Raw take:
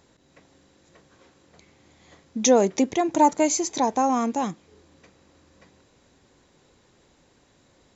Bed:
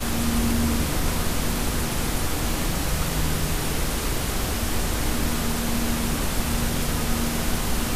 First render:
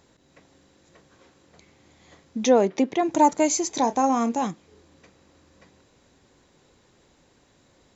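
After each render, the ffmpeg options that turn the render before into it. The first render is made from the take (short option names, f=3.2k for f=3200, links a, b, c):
-filter_complex "[0:a]asettb=1/sr,asplit=3[a][b][c];[a]atrim=end=2.444[d];[b]atrim=start=2.44:end=3.03,asetpts=PTS-STARTPTS,afade=t=in:d=0.004:c=qsin,afade=t=out:st=0.586:d=0.004:c=qsin,highpass=160,lowpass=3.9k[e];[c]atrim=start=3.026[f];[d][e]acrossfade=d=0.004:c1=hsin:c2=qsin[g];[g][f]acrossfade=d=0.004:c1=qsin:c2=hsin,asettb=1/sr,asplit=3[h][i][j];[h]atrim=end=3.704[k];[i]atrim=start=3.7:end=4.47,asetpts=PTS-STARTPTS,afade=t=in:d=0.004:c=qsin,afade=t=out:st=0.766:d=0.004:c=qsin,asplit=2[l][m];[m]adelay=30,volume=-12dB[n];[l][n]amix=inputs=2:normalize=0,atrim=end_sample=33957[o];[j]atrim=start=4.466[p];[k][o]acrossfade=d=0.004:c1=hsin:c2=qsin[q];[q][p]acrossfade=d=0.004:c1=qsin:c2=hsin"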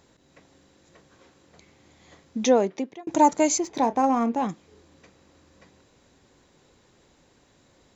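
-filter_complex "[0:a]asettb=1/sr,asplit=3[a][b][c];[a]atrim=end=3.584[d];[b]atrim=start=3.58:end=4.49,asetpts=PTS-STARTPTS,afade=t=in:d=0.004:c=qsin,afade=t=out:st=0.906:d=0.004:c=qsin,adynamicsmooth=sensitivity=1:basefreq=2.7k[e];[c]atrim=start=4.486[f];[d][e]acrossfade=d=0.004:c1=hsin:c2=qsin[g];[g][f]acrossfade=d=0.004:c1=qsin:c2=hsin,asplit=2[h][i];[h]atrim=end=3.07,asetpts=PTS-STARTPTS,afade=t=out:st=2.45:d=0.62[j];[i]atrim=start=3.07,asetpts=PTS-STARTPTS,afade=t=in:d=0.004:c=hsin[k];[j][k]concat=n=2:v=0:a=1"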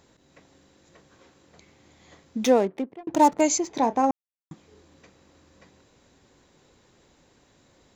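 -filter_complex "[0:a]asettb=1/sr,asplit=3[a][b][c];[a]atrim=end=2.444[d];[b]atrim=start=2.44:end=3.41,asetpts=PTS-STARTPTS,afade=t=in:d=0.004:c=qsin,afade=t=out:st=0.966:d=0.004:c=qsin,adynamicsmooth=sensitivity=7.5:basefreq=790[e];[c]atrim=start=3.406[f];[d][e]acrossfade=d=0.004:c1=hsin:c2=qsin[g];[g][f]acrossfade=d=0.004:c1=qsin:c2=hsin,asplit=3[h][i][j];[h]atrim=end=4.11,asetpts=PTS-STARTPTS,afade=t=out:st=4.106:d=0.004:c=hsin[k];[i]atrim=start=4.11:end=4.51,asetpts=PTS-STARTPTS,volume=0[l];[j]atrim=start=4.51,asetpts=PTS-STARTPTS,afade=t=in:d=0.004:c=hsin[m];[k][l][m]concat=n=3:v=0:a=1"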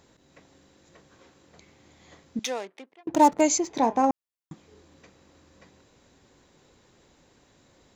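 -filter_complex "[0:a]asettb=1/sr,asplit=3[a][b][c];[a]atrim=end=2.394[d];[b]atrim=start=2.39:end=3.06,asetpts=PTS-STARTPTS,afade=t=in:d=0.004:c=qsin,afade=t=out:st=0.666:d=0.004:c=qsin,bandpass=f=4.5k:t=q:w=0.5[e];[c]atrim=start=3.056[f];[d][e]acrossfade=d=0.004:c1=hsin:c2=qsin[g];[g][f]acrossfade=d=0.004:c1=qsin:c2=hsin,asettb=1/sr,asplit=3[h][i][j];[h]atrim=end=3.654[k];[i]atrim=start=3.65:end=4.1,asetpts=PTS-STARTPTS,afade=t=in:d=0.004:c=qsin,afade=t=out:st=0.446:d=0.004:c=qsin,bandreject=f=204.9:t=h:w=4,bandreject=f=409.8:t=h:w=4,bandreject=f=614.7:t=h:w=4,bandreject=f=819.6:t=h:w=4,bandreject=f=1.0245k:t=h:w=4,bandreject=f=1.2294k:t=h:w=4,bandreject=f=1.4343k:t=h:w=4,bandreject=f=1.6392k:t=h:w=4,bandreject=f=1.8441k:t=h:w=4,bandreject=f=2.049k:t=h:w=4,bandreject=f=2.2539k:t=h:w=4,bandreject=f=2.4588k:t=h:w=4,bandreject=f=2.6637k:t=h:w=4,bandreject=f=2.8686k:t=h:w=4,bandreject=f=3.0735k:t=h:w=4,bandreject=f=3.2784k:t=h:w=4,bandreject=f=3.4833k:t=h:w=4[l];[j]atrim=start=4.096[m];[k][l]acrossfade=d=0.004:c1=hsin:c2=qsin[n];[n][m]acrossfade=d=0.004:c1=qsin:c2=hsin"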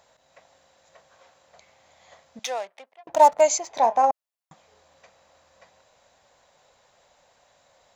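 -af "lowshelf=f=460:t=q:w=3:g=-10.5"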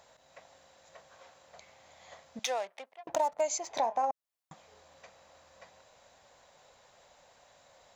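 -af "alimiter=limit=-8.5dB:level=0:latency=1:release=482,acompressor=threshold=-30dB:ratio=3"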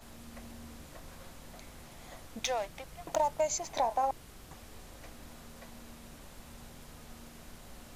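-filter_complex "[1:a]volume=-26.5dB[a];[0:a][a]amix=inputs=2:normalize=0"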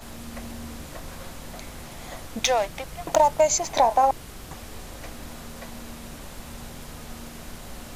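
-af "volume=11dB"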